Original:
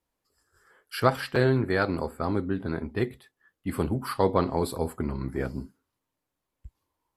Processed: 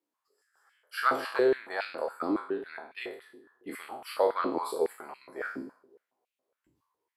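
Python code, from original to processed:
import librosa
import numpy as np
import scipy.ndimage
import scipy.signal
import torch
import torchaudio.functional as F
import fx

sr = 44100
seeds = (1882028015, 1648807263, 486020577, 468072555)

y = fx.spec_trails(x, sr, decay_s=0.54)
y = fx.echo_bbd(y, sr, ms=271, stages=2048, feedback_pct=37, wet_db=-22.0)
y = fx.filter_held_highpass(y, sr, hz=7.2, low_hz=310.0, high_hz=2600.0)
y = y * 10.0 ** (-8.5 / 20.0)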